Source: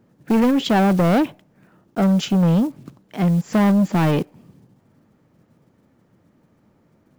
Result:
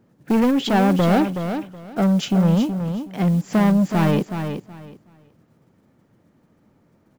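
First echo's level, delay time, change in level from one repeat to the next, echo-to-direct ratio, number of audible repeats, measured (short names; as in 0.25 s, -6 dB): -8.0 dB, 0.372 s, -13.5 dB, -8.0 dB, 2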